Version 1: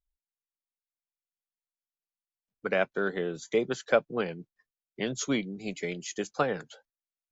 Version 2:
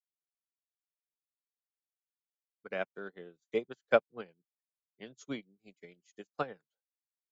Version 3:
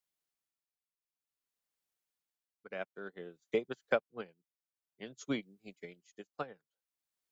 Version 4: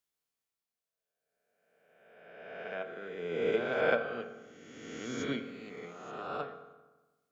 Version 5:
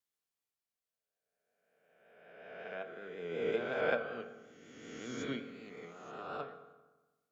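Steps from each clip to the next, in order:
upward expander 2.5:1, over -46 dBFS
tremolo 0.54 Hz, depth 74%; compressor 4:1, threshold -35 dBFS, peak gain reduction 13 dB; gain +6.5 dB
spectral swells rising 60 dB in 1.75 s; reverb RT60 1.2 s, pre-delay 3 ms, DRR 6.5 dB; gain -2.5 dB
vibrato 5.4 Hz 35 cents; gain -4 dB

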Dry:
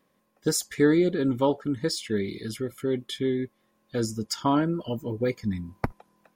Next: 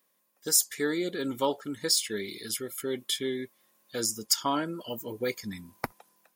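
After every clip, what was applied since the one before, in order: RIAA curve recording; AGC gain up to 6 dB; gain -7 dB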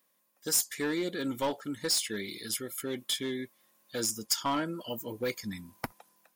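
in parallel at -4 dB: wavefolder -25 dBFS; on the sum: bell 410 Hz -6 dB 0.22 oct; gain -4.5 dB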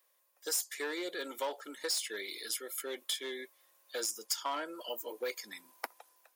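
HPF 410 Hz 24 dB/oct; compressor 2:1, threshold -35 dBFS, peak gain reduction 7 dB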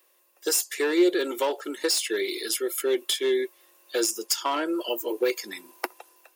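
small resonant body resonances 360/2700 Hz, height 14 dB, ringing for 45 ms; gain +8.5 dB

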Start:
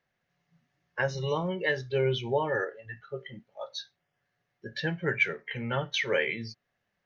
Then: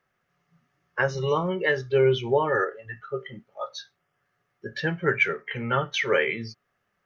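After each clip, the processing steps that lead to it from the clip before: thirty-one-band EQ 400 Hz +5 dB, 1250 Hz +11 dB, 4000 Hz -5 dB; gain +3 dB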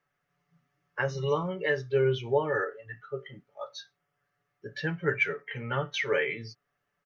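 comb 6.9 ms, depth 50%; gain -6 dB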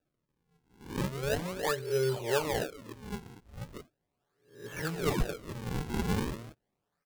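spectral swells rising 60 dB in 0.46 s; decimation with a swept rate 41×, swing 160% 0.38 Hz; gain -4.5 dB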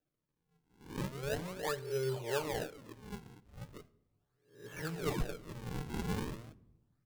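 shoebox room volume 3400 m³, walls furnished, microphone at 0.48 m; gain -6 dB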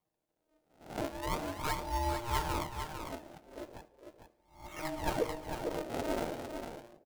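ring modulator 470 Hz; echo 0.452 s -7 dB; gain +4.5 dB

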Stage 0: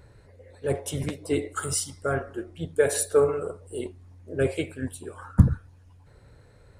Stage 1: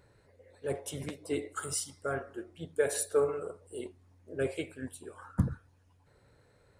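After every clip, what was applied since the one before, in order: low shelf 110 Hz -11 dB; gain -6.5 dB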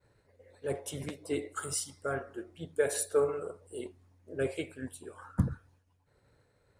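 expander -59 dBFS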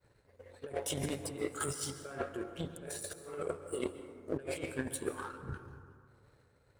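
negative-ratio compressor -42 dBFS, ratio -1; power-law curve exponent 1.4; plate-style reverb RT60 2.1 s, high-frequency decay 0.35×, pre-delay 0.115 s, DRR 10 dB; gain +6 dB

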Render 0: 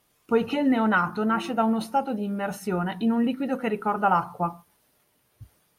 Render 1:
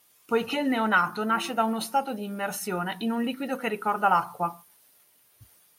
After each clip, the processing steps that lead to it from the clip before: tilt +2.5 dB/oct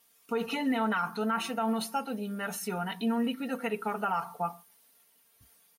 comb 4.4 ms, depth 65%; limiter -16 dBFS, peak gain reduction 8 dB; gain -5 dB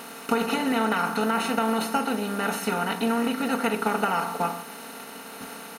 per-bin compression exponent 0.4; transient shaper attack +4 dB, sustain -1 dB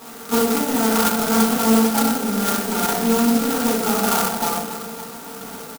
feedback echo 0.284 s, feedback 59%, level -14 dB; reverb RT60 0.85 s, pre-delay 3 ms, DRR -8.5 dB; clock jitter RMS 0.11 ms; gain -7 dB

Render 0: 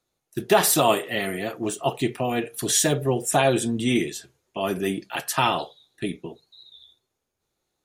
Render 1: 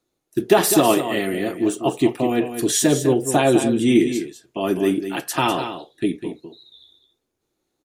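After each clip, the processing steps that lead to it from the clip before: bell 310 Hz +10 dB 0.87 oct; on a send: echo 0.201 s -9.5 dB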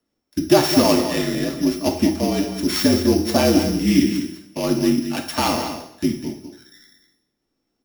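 sample sorter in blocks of 8 samples; two-slope reverb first 0.61 s, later 1.6 s, DRR 4 dB; frequency shift -48 Hz; gain -1 dB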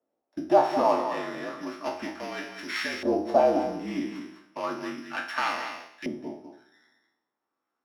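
spectral trails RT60 0.34 s; in parallel at -3 dB: compressor, threshold -22 dBFS, peak gain reduction 14 dB; on the sum: LFO band-pass saw up 0.33 Hz 610–2100 Hz; gain -1 dB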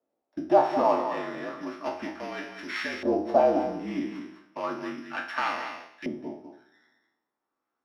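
high shelf 5900 Hz -11.5 dB

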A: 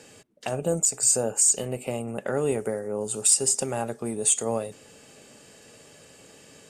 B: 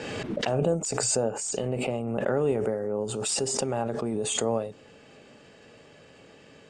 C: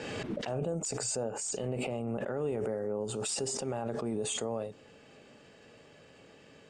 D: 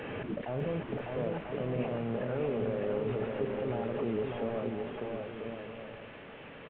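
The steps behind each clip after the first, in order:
LPF 3400 Hz 12 dB/oct; dynamic EQ 2100 Hz, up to -5 dB, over -52 dBFS, Q 1.3; backwards sustainer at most 22 dB/s
limiter -21 dBFS, peak gain reduction 9 dB; gain -4 dB
delta modulation 16 kbps, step -44 dBFS; on a send: bouncing-ball echo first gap 0.6 s, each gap 0.65×, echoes 5

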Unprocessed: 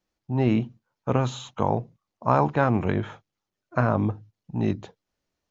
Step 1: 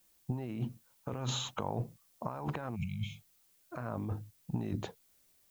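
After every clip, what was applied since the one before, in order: negative-ratio compressor -31 dBFS, ratio -1; added noise blue -63 dBFS; spectral repair 2.78–3.19, 230–2100 Hz after; gain -5.5 dB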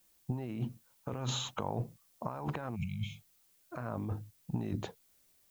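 nothing audible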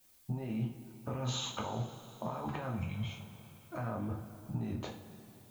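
compressor, threshold -36 dBFS, peak gain reduction 7.5 dB; two-slope reverb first 0.34 s, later 3.6 s, from -18 dB, DRR -1.5 dB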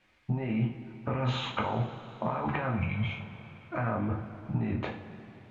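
synth low-pass 2200 Hz, resonance Q 2.2; gain +6.5 dB

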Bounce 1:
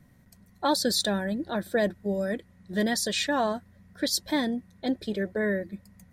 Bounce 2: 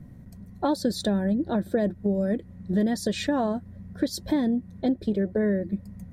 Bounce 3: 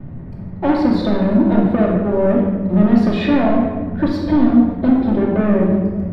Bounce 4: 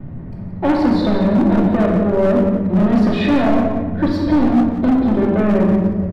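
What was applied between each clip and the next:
tilt shelf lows +8.5 dB, about 730 Hz; compressor 3:1, threshold -29 dBFS, peak gain reduction 9.5 dB; gain +5.5 dB
sample leveller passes 3; air absorption 390 m; shoebox room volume 1200 m³, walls mixed, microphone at 2.6 m; gain -1.5 dB
hard clip -11 dBFS, distortion -13 dB; on a send: feedback echo 0.177 s, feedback 17%, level -11 dB; on the sum: gain +1 dB

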